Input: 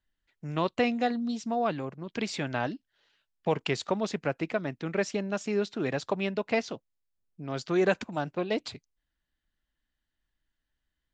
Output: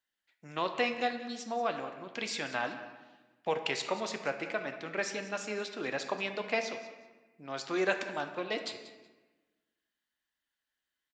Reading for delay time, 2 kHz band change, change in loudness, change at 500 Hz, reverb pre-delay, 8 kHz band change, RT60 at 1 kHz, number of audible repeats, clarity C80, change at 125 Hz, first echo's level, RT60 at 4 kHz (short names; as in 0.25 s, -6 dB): 0.186 s, +0.5 dB, -4.0 dB, -5.0 dB, 4 ms, +0.5 dB, 1.2 s, 2, 9.5 dB, -14.0 dB, -15.5 dB, 0.80 s